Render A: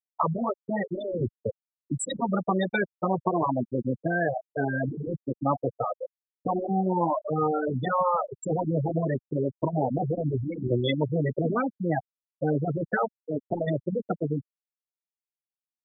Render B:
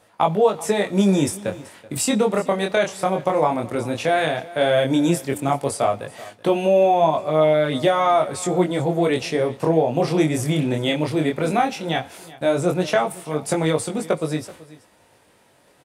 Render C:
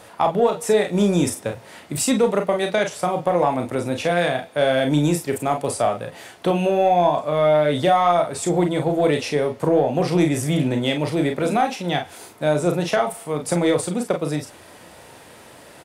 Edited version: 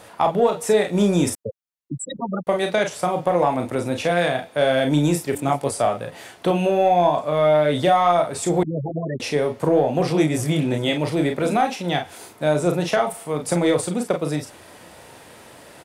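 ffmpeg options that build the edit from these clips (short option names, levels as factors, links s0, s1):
-filter_complex "[0:a]asplit=2[s0][s1];[1:a]asplit=2[s2][s3];[2:a]asplit=5[s4][s5][s6][s7][s8];[s4]atrim=end=1.352[s9];[s0]atrim=start=1.348:end=2.472[s10];[s5]atrim=start=2.468:end=5.352[s11];[s2]atrim=start=5.348:end=5.772[s12];[s6]atrim=start=5.768:end=8.632[s13];[s1]atrim=start=8.628:end=9.202[s14];[s7]atrim=start=9.198:end=10.102[s15];[s3]atrim=start=10.098:end=10.932[s16];[s8]atrim=start=10.928[s17];[s9][s10]acrossfade=d=0.004:c1=hsin:c2=hsin[s18];[s18][s11]acrossfade=d=0.004:c1=hsin:c2=hsin[s19];[s19][s12]acrossfade=d=0.004:c1=hsin:c2=hsin[s20];[s20][s13]acrossfade=d=0.004:c1=hsin:c2=hsin[s21];[s21][s14]acrossfade=d=0.004:c1=hsin:c2=hsin[s22];[s22][s15]acrossfade=d=0.004:c1=hsin:c2=hsin[s23];[s23][s16]acrossfade=d=0.004:c1=hsin:c2=hsin[s24];[s24][s17]acrossfade=d=0.004:c1=hsin:c2=hsin"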